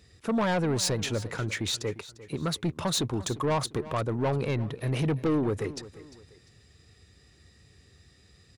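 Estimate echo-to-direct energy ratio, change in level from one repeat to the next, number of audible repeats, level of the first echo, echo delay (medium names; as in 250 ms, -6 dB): -16.5 dB, -9.0 dB, 2, -17.0 dB, 349 ms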